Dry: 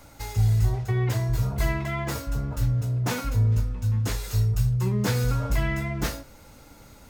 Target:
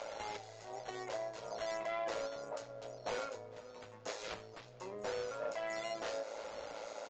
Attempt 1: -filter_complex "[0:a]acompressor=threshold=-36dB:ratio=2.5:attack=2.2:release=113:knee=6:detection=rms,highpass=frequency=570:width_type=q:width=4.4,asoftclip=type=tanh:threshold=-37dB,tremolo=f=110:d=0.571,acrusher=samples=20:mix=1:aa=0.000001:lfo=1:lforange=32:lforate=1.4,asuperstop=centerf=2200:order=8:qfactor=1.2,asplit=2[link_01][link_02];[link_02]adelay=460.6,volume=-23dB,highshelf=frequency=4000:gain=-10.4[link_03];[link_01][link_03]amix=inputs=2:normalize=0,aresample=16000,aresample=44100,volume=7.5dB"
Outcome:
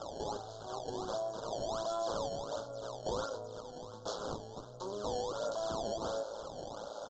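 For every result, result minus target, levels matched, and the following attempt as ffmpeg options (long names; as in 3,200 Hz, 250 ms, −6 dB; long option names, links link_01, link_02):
2,000 Hz band −11.5 dB; sample-and-hold swept by an LFO: distortion +12 dB; downward compressor: peak gain reduction −6.5 dB
-filter_complex "[0:a]acompressor=threshold=-36dB:ratio=2.5:attack=2.2:release=113:knee=6:detection=rms,highpass=frequency=570:width_type=q:width=4.4,asoftclip=type=tanh:threshold=-37dB,tremolo=f=110:d=0.571,acrusher=samples=20:mix=1:aa=0.000001:lfo=1:lforange=32:lforate=1.4,asplit=2[link_01][link_02];[link_02]adelay=460.6,volume=-23dB,highshelf=frequency=4000:gain=-10.4[link_03];[link_01][link_03]amix=inputs=2:normalize=0,aresample=16000,aresample=44100,volume=7.5dB"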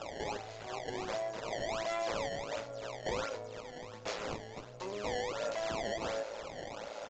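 sample-and-hold swept by an LFO: distortion +12 dB; downward compressor: peak gain reduction −6.5 dB
-filter_complex "[0:a]acompressor=threshold=-36dB:ratio=2.5:attack=2.2:release=113:knee=6:detection=rms,highpass=frequency=570:width_type=q:width=4.4,asoftclip=type=tanh:threshold=-37dB,tremolo=f=110:d=0.571,acrusher=samples=5:mix=1:aa=0.000001:lfo=1:lforange=8:lforate=1.4,asplit=2[link_01][link_02];[link_02]adelay=460.6,volume=-23dB,highshelf=frequency=4000:gain=-10.4[link_03];[link_01][link_03]amix=inputs=2:normalize=0,aresample=16000,aresample=44100,volume=7.5dB"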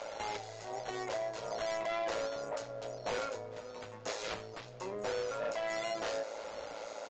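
downward compressor: peak gain reduction −6.5 dB
-filter_complex "[0:a]acompressor=threshold=-46.5dB:ratio=2.5:attack=2.2:release=113:knee=6:detection=rms,highpass=frequency=570:width_type=q:width=4.4,asoftclip=type=tanh:threshold=-37dB,tremolo=f=110:d=0.571,acrusher=samples=5:mix=1:aa=0.000001:lfo=1:lforange=8:lforate=1.4,asplit=2[link_01][link_02];[link_02]adelay=460.6,volume=-23dB,highshelf=frequency=4000:gain=-10.4[link_03];[link_01][link_03]amix=inputs=2:normalize=0,aresample=16000,aresample=44100,volume=7.5dB"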